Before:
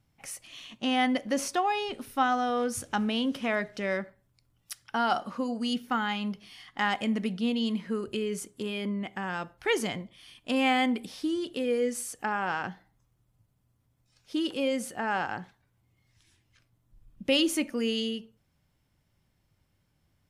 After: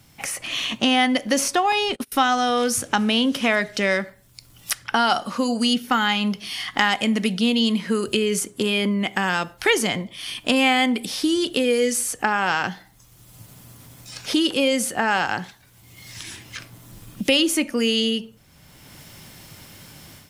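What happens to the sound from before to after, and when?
0:01.72–0:02.12: noise gate −41 dBFS, range −31 dB
whole clip: automatic gain control gain up to 11.5 dB; high-shelf EQ 2,500 Hz +8.5 dB; multiband upward and downward compressor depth 70%; level −4 dB

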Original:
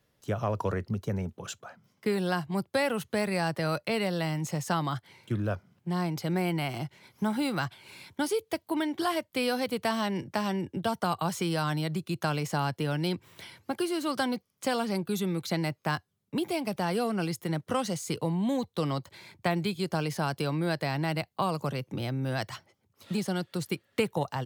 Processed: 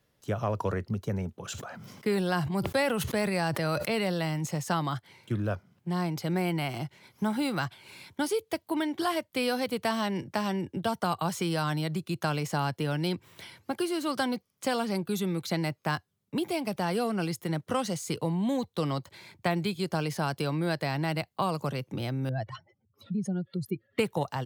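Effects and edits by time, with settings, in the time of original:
0:01.50–0:04.46: level that may fall only so fast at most 28 dB per second
0:22.29–0:23.99: expanding power law on the bin magnitudes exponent 2.2

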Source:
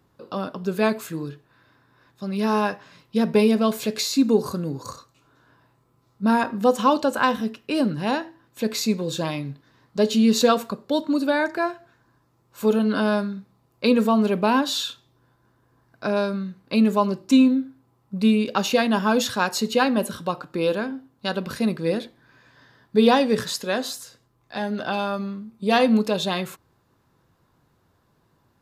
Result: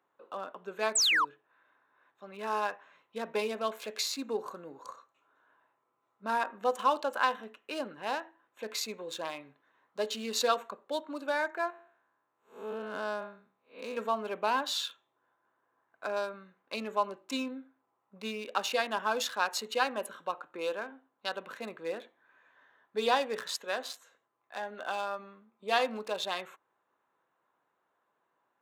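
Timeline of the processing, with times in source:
0:00.95–0:01.25: sound drawn into the spectrogram fall 900–8,700 Hz −19 dBFS
0:11.70–0:13.97: spectrum smeared in time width 180 ms
whole clip: adaptive Wiener filter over 9 samples; high-pass filter 620 Hz 12 dB per octave; level −6 dB

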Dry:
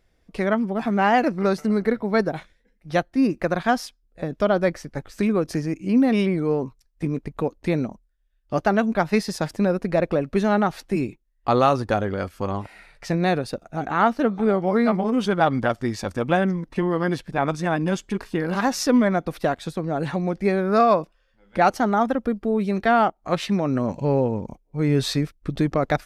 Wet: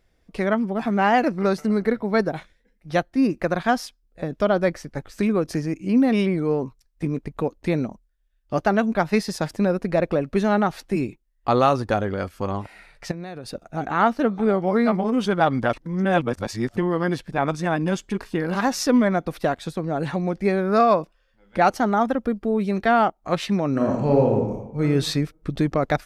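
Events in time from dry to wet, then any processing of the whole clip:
0:13.11–0:13.55: downward compressor 16 to 1, threshold −29 dBFS
0:15.73–0:16.77: reverse
0:23.71–0:24.81: thrown reverb, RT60 0.84 s, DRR −1 dB

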